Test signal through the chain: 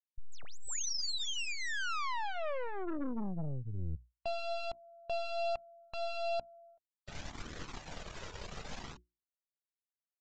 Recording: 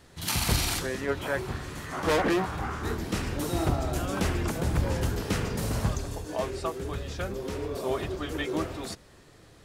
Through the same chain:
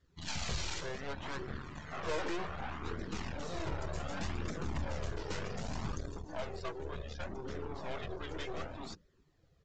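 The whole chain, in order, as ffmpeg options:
ffmpeg -i in.wav -af "equalizer=frequency=110:width_type=o:width=0.24:gain=-8,bandreject=frequency=60:width_type=h:width=6,bandreject=frequency=120:width_type=h:width=6,bandreject=frequency=180:width_type=h:width=6,bandreject=frequency=240:width_type=h:width=6,bandreject=frequency=300:width_type=h:width=6,bandreject=frequency=360:width_type=h:width=6,aeval=exprs='0.224*(cos(1*acos(clip(val(0)/0.224,-1,1)))-cos(1*PI/2))+0.00794*(cos(3*acos(clip(val(0)/0.224,-1,1)))-cos(3*PI/2))+0.0355*(cos(4*acos(clip(val(0)/0.224,-1,1)))-cos(4*PI/2))+0.0794*(cos(6*acos(clip(val(0)/0.224,-1,1)))-cos(6*PI/2))+0.0794*(cos(8*acos(clip(val(0)/0.224,-1,1)))-cos(8*PI/2))':channel_layout=same,afftdn=noise_reduction=14:noise_floor=-46,aresample=16000,asoftclip=type=tanh:threshold=-24dB,aresample=44100,flanger=delay=0.5:depth=1.7:regen=-33:speed=0.66:shape=triangular,volume=-3dB" out.wav

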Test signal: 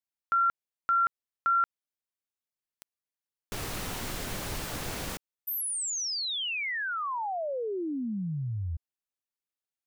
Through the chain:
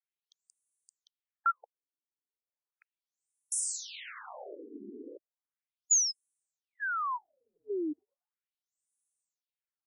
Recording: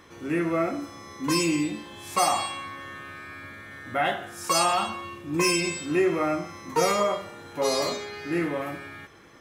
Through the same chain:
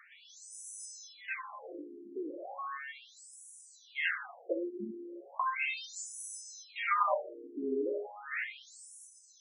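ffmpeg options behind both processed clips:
ffmpeg -i in.wav -af "aexciter=amount=8.6:drive=4.4:freq=7100,afftfilt=real='re*between(b*sr/1024,300*pow(7700/300,0.5+0.5*sin(2*PI*0.36*pts/sr))/1.41,300*pow(7700/300,0.5+0.5*sin(2*PI*0.36*pts/sr))*1.41)':imag='im*between(b*sr/1024,300*pow(7700/300,0.5+0.5*sin(2*PI*0.36*pts/sr))/1.41,300*pow(7700/300,0.5+0.5*sin(2*PI*0.36*pts/sr))*1.41)':win_size=1024:overlap=0.75" out.wav

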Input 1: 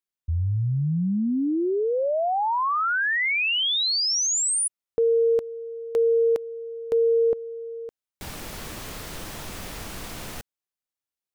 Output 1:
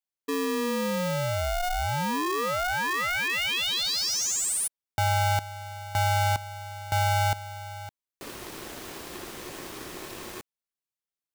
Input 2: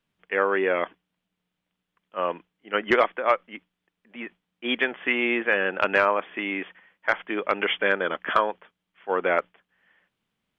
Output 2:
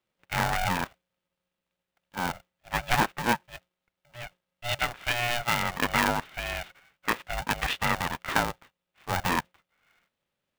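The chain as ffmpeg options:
ffmpeg -i in.wav -af "aeval=exprs='val(0)*sgn(sin(2*PI*360*n/s))':channel_layout=same,volume=-4dB" out.wav

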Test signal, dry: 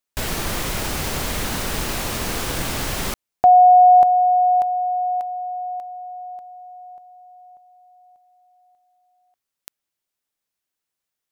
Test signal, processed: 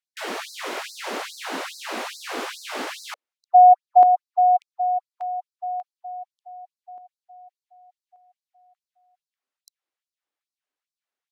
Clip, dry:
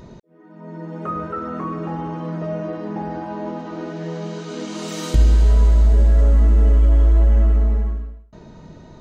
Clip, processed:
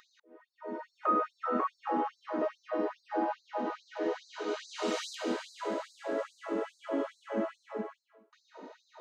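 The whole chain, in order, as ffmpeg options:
ffmpeg -i in.wav -af "aemphasis=mode=reproduction:type=75fm,afftfilt=real='re*gte(b*sr/1024,210*pow(4000/210,0.5+0.5*sin(2*PI*2.4*pts/sr)))':imag='im*gte(b*sr/1024,210*pow(4000/210,0.5+0.5*sin(2*PI*2.4*pts/sr)))':win_size=1024:overlap=0.75" out.wav

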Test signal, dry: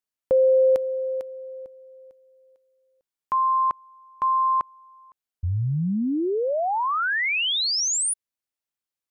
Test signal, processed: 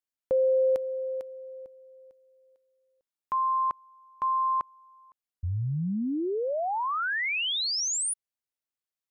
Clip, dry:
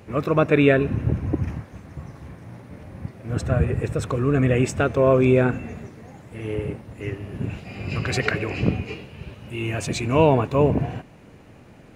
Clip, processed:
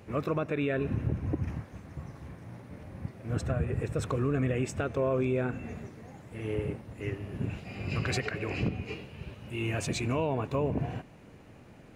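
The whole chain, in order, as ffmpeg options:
ffmpeg -i in.wav -af "alimiter=limit=-14.5dB:level=0:latency=1:release=239,volume=-5dB" out.wav

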